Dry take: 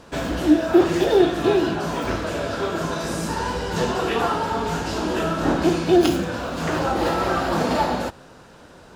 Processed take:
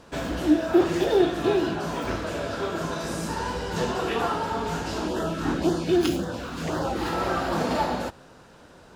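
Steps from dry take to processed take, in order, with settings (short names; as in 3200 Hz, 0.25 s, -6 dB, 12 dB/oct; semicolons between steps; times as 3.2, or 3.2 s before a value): 5.08–7.13 LFO notch sine 1.9 Hz 540–2500 Hz; gain -4 dB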